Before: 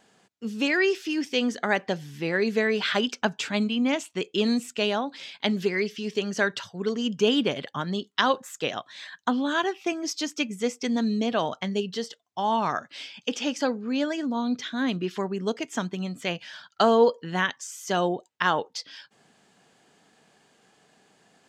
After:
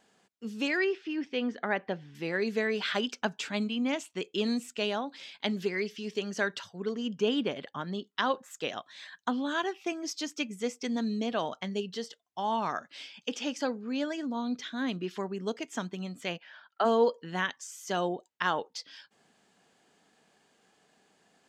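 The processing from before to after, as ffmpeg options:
ffmpeg -i in.wav -filter_complex "[0:a]asettb=1/sr,asplit=3[link_01][link_02][link_03];[link_01]atrim=end=0.844[link_04];[link_02]atrim=start=0.84:end=2.15,asetpts=PTS-STARTPTS,afade=type=in:duration=0.004:curve=qsin,afade=type=out:start_time=1.306:duration=0.004:curve=qsin,lowpass=2700[link_05];[link_03]atrim=start=2.146[link_06];[link_04][link_05]acrossfade=duration=0.004:curve1=hsin:curve2=qsin[link_07];[link_07][link_06]acrossfade=duration=0.004:curve1=qsin:curve2=hsin,asettb=1/sr,asplit=3[link_08][link_09][link_10];[link_08]atrim=end=6.804[link_11];[link_09]atrim=start=6.8:end=8.51,asetpts=PTS-STARTPTS,afade=type=in:duration=0.004:curve=qsin,afade=type=out:start_time=1.706:duration=0.004:curve=qsin,highshelf=frequency=4300:gain=-8[link_12];[link_10]atrim=start=8.506[link_13];[link_11][link_12]acrossfade=duration=0.004:curve1=hsin:curve2=qsin[link_14];[link_14][link_13]acrossfade=duration=0.004:curve1=qsin:curve2=hsin,asplit=3[link_15][link_16][link_17];[link_15]afade=type=out:start_time=16.37:duration=0.02[link_18];[link_16]highpass=390,lowpass=2200,afade=type=in:start_time=16.37:duration=0.02,afade=type=out:start_time=16.84:duration=0.02[link_19];[link_17]afade=type=in:start_time=16.84:duration=0.02[link_20];[link_18][link_19][link_20]amix=inputs=3:normalize=0,equalizer=frequency=130:width=3:gain=-5.5,volume=-5.5dB" out.wav

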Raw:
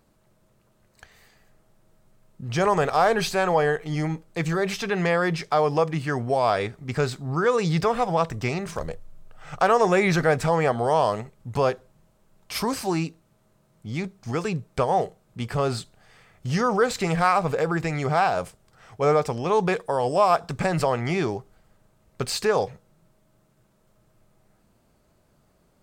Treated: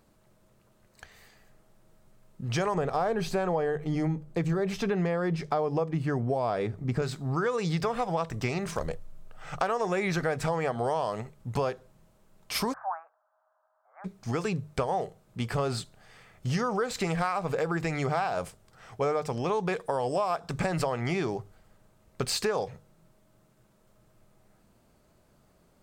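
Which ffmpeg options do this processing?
ffmpeg -i in.wav -filter_complex "[0:a]asettb=1/sr,asplit=3[link_01][link_02][link_03];[link_01]atrim=end=2.744[link_04];[link_02]atrim=start=2.74:end=7.02,asetpts=PTS-STARTPTS,afade=type=in:duration=0.004:curve=qsin,afade=type=out:start_time=4.276:duration=0.004:curve=qsin,tiltshelf=frequency=850:gain=6[link_05];[link_03]atrim=start=7.016[link_06];[link_04][link_05]acrossfade=duration=0.004:curve1=hsin:curve2=qsin[link_07];[link_07][link_06]acrossfade=duration=0.004:curve1=qsin:curve2=hsin,asplit=3[link_08][link_09][link_10];[link_08]afade=type=out:start_time=12.72:duration=0.02[link_11];[link_09]asuperpass=centerf=1000:order=12:qfactor=1,afade=type=in:start_time=12.72:duration=0.02,afade=type=out:start_time=14.04:duration=0.02[link_12];[link_10]afade=type=in:start_time=14.04:duration=0.02[link_13];[link_11][link_12][link_13]amix=inputs=3:normalize=0,bandreject=frequency=50:width_type=h:width=6,bandreject=frequency=100:width_type=h:width=6,bandreject=frequency=150:width_type=h:width=6,acompressor=threshold=-25dB:ratio=6" out.wav

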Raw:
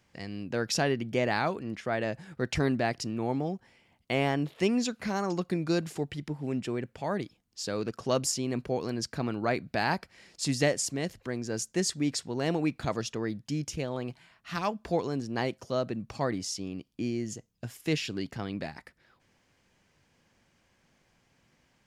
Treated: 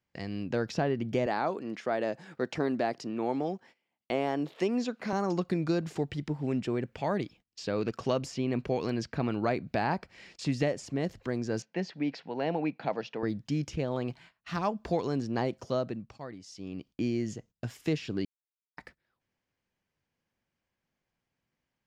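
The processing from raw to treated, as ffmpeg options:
ffmpeg -i in.wav -filter_complex "[0:a]asettb=1/sr,asplit=3[link_01][link_02][link_03];[link_01]atrim=end=1.264[link_04];[link_02]atrim=start=1.26:end=5.13,asetpts=PTS-STARTPTS,afade=type=in:duration=0.004:curve=qsin,afade=type=out:start_time=3.866:duration=0.004:curve=qsin,highpass=250[link_05];[link_03]atrim=start=5.126[link_06];[link_04][link_05]acrossfade=duration=0.004:curve1=hsin:curve2=qsin[link_07];[link_07][link_06]acrossfade=duration=0.004:curve1=qsin:curve2=hsin,asettb=1/sr,asplit=3[link_08][link_09][link_10];[link_08]atrim=end=6.924[link_11];[link_09]atrim=start=6.92:end=10.94,asetpts=PTS-STARTPTS,afade=type=in:duration=0.004:curve=qsin,afade=type=out:start_time=4.016:duration=0.004:curve=qsin,equalizer=frequency=2500:width=1.5:gain=6[link_12];[link_10]atrim=start=10.936[link_13];[link_11][link_12]acrossfade=duration=0.004:curve1=hsin:curve2=qsin[link_14];[link_14][link_13]acrossfade=duration=0.004:curve1=qsin:curve2=hsin,asettb=1/sr,asplit=3[link_15][link_16][link_17];[link_15]atrim=end=11.624[link_18];[link_16]atrim=start=11.62:end=13.23,asetpts=PTS-STARTPTS,afade=type=in:duration=0.004:curve=qsin,afade=type=out:start_time=1.606:duration=0.004:curve=qsin,highpass=frequency=180:width=0.5412,highpass=frequency=180:width=1.3066,equalizer=frequency=230:width_type=q:width=4:gain=-7,equalizer=frequency=360:width_type=q:width=4:gain=-8,equalizer=frequency=820:width_type=q:width=4:gain=4,equalizer=frequency=1200:width_type=q:width=4:gain=-7,equalizer=frequency=2500:width_type=q:width=4:gain=3,equalizer=frequency=3600:width_type=q:width=4:gain=-6,lowpass=frequency=3900:width=0.5412,lowpass=frequency=3900:width=1.3066[link_19];[link_17]atrim=start=13.226[link_20];[link_18][link_19]acrossfade=duration=0.004:curve1=hsin:curve2=qsin[link_21];[link_21][link_20]acrossfade=duration=0.004:curve1=qsin:curve2=hsin,asplit=5[link_22][link_23][link_24][link_25][link_26];[link_22]atrim=end=16.17,asetpts=PTS-STARTPTS,afade=type=out:start_time=15.68:duration=0.49:silence=0.177828[link_27];[link_23]atrim=start=16.17:end=16.46,asetpts=PTS-STARTPTS,volume=-15dB[link_28];[link_24]atrim=start=16.46:end=18.25,asetpts=PTS-STARTPTS,afade=type=in:duration=0.49:silence=0.177828,afade=type=out:start_time=1.786:duration=0.004:curve=hsin[link_29];[link_25]atrim=start=18.25:end=18.77,asetpts=PTS-STARTPTS,volume=0[link_30];[link_26]atrim=start=18.77,asetpts=PTS-STARTPTS,afade=type=in:duration=0.004:curve=hsin[link_31];[link_27][link_28][link_29][link_30][link_31]concat=n=5:v=0:a=1,agate=range=-19dB:threshold=-55dB:ratio=16:detection=peak,equalizer=frequency=11000:width_type=o:width=0.82:gain=-12,acrossover=split=1300|3800[link_32][link_33][link_34];[link_32]acompressor=threshold=-27dB:ratio=4[link_35];[link_33]acompressor=threshold=-49dB:ratio=4[link_36];[link_34]acompressor=threshold=-52dB:ratio=4[link_37];[link_35][link_36][link_37]amix=inputs=3:normalize=0,volume=2.5dB" out.wav

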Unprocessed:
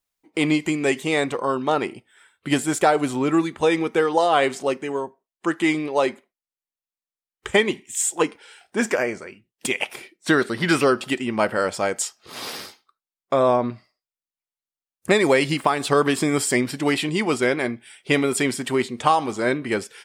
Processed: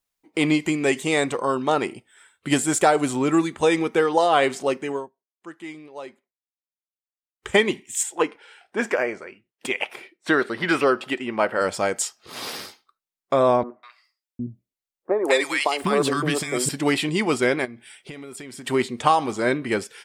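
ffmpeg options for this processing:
ffmpeg -i in.wav -filter_complex "[0:a]asettb=1/sr,asplit=3[link_01][link_02][link_03];[link_01]atrim=end=0.934[link_04];[link_02]atrim=start=0.93:end=3.87,asetpts=PTS-STARTPTS,afade=type=in:duration=0.004:curve=qsin,afade=type=out:start_time=2.936:duration=0.004:curve=qsin,equalizer=frequency=7800:width=1.6:gain=5.5[link_05];[link_03]atrim=start=3.866[link_06];[link_04][link_05]acrossfade=duration=0.004:curve1=hsin:curve2=qsin[link_07];[link_07][link_06]acrossfade=duration=0.004:curve1=qsin:curve2=hsin,asettb=1/sr,asplit=3[link_08][link_09][link_10];[link_08]atrim=end=8.034[link_11];[link_09]atrim=start=8.03:end=11.61,asetpts=PTS-STARTPTS,afade=type=in:duration=0.004:curve=qsin,afade=type=out:start_time=3.576:duration=0.004:curve=qsin,bass=frequency=250:gain=-9,treble=frequency=4000:gain=-10[link_12];[link_10]atrim=start=11.606[link_13];[link_11][link_12]acrossfade=duration=0.004:curve1=hsin:curve2=qsin[link_14];[link_14][link_13]acrossfade=duration=0.004:curve1=qsin:curve2=hsin,asettb=1/sr,asplit=3[link_15][link_16][link_17];[link_15]atrim=end=13.634[link_18];[link_16]atrim=start=13.63:end=16.69,asetpts=PTS-STARTPTS,afade=type=in:duration=0.004:curve=qsin,afade=type=out:start_time=3.056:duration=0.004:curve=qsin,acrossover=split=320|1100[link_19][link_20][link_21];[link_21]adelay=200[link_22];[link_19]adelay=760[link_23];[link_23][link_20][link_22]amix=inputs=3:normalize=0,atrim=end_sample=134946[link_24];[link_17]atrim=start=16.686[link_25];[link_18][link_24]acrossfade=duration=0.004:curve1=hsin:curve2=qsin[link_26];[link_26][link_25]acrossfade=duration=0.004:curve1=qsin:curve2=hsin,asplit=3[link_27][link_28][link_29];[link_27]afade=type=out:start_time=17.64:duration=0.02[link_30];[link_28]acompressor=threshold=-34dB:ratio=12:attack=3.2:release=140:knee=1:detection=peak,afade=type=in:start_time=17.64:duration=0.02,afade=type=out:start_time=18.66:duration=0.02[link_31];[link_29]afade=type=in:start_time=18.66:duration=0.02[link_32];[link_30][link_31][link_32]amix=inputs=3:normalize=0,asplit=3[link_33][link_34][link_35];[link_33]atrim=end=5.1,asetpts=PTS-STARTPTS,afade=type=out:start_time=4.92:duration=0.18:silence=0.149624[link_36];[link_34]atrim=start=5.1:end=7.34,asetpts=PTS-STARTPTS,volume=-16.5dB[link_37];[link_35]atrim=start=7.34,asetpts=PTS-STARTPTS,afade=type=in:duration=0.18:silence=0.149624[link_38];[link_36][link_37][link_38]concat=n=3:v=0:a=1" out.wav

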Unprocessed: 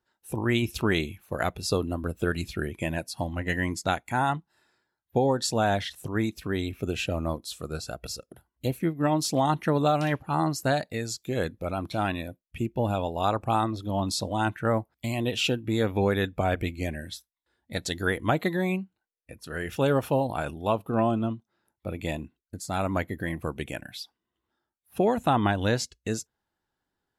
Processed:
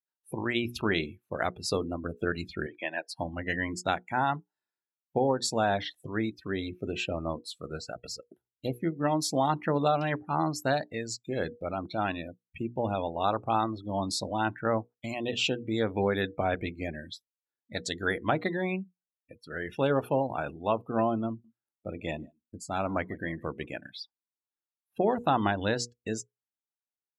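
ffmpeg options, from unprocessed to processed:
ffmpeg -i in.wav -filter_complex "[0:a]asettb=1/sr,asplit=3[link_01][link_02][link_03];[link_01]atrim=end=2.664[link_04];[link_02]atrim=start=2.66:end=3.09,asetpts=PTS-STARTPTS,afade=type=in:duration=0.004:curve=qsin,afade=type=out:start_time=0.426:duration=0.004:curve=qsin,highpass=420,equalizer=frequency=470:width_type=q:width=4:gain=-4,equalizer=frequency=770:width_type=q:width=4:gain=3,equalizer=frequency=1700:width_type=q:width=4:gain=5,equalizer=frequency=3500:width_type=q:width=4:gain=4,lowpass=frequency=5200:width=0.5412,lowpass=frequency=5200:width=1.3066[link_05];[link_03]atrim=start=3.086[link_06];[link_04][link_05]acrossfade=duration=0.004:curve1=hsin:curve2=qsin[link_07];[link_07][link_06]acrossfade=duration=0.004:curve1=qsin:curve2=hsin,asettb=1/sr,asplit=3[link_08][link_09][link_10];[link_08]atrim=end=21.294[link_11];[link_09]atrim=start=21.29:end=23.9,asetpts=PTS-STARTPTS,afade=type=in:duration=0.004:curve=qsin,afade=type=out:start_time=2.606:duration=0.004:curve=qsin,aecho=1:1:151:0.106,atrim=end_sample=115101[link_12];[link_10]atrim=start=23.896[link_13];[link_11][link_12]acrossfade=duration=0.004:curve1=hsin:curve2=qsin[link_14];[link_14][link_13]acrossfade=duration=0.004:curve1=qsin:curve2=hsin,highpass=frequency=160:poles=1,bandreject=frequency=60:width_type=h:width=6,bandreject=frequency=120:width_type=h:width=6,bandreject=frequency=180:width_type=h:width=6,bandreject=frequency=240:width_type=h:width=6,bandreject=frequency=300:width_type=h:width=6,bandreject=frequency=360:width_type=h:width=6,bandreject=frequency=420:width_type=h:width=6,bandreject=frequency=480:width_type=h:width=6,afftdn=noise_reduction=24:noise_floor=-40,volume=-1.5dB" out.wav

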